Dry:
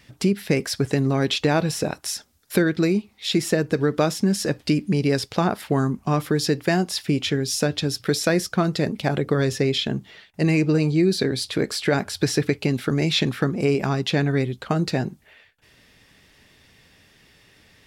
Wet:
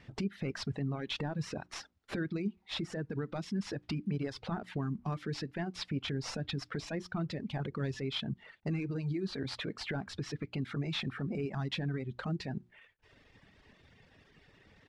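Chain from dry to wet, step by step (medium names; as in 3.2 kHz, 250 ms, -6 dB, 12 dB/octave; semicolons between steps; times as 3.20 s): CVSD coder 64 kbps; tape spacing loss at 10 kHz 25 dB; compression 5:1, threshold -25 dBFS, peak gain reduction 9.5 dB; dynamic bell 500 Hz, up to -6 dB, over -41 dBFS, Q 0.81; peak limiter -25.5 dBFS, peak gain reduction 9 dB; tempo 1.2×; hum notches 60/120/180/240/300/360 Hz; reverb removal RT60 1.1 s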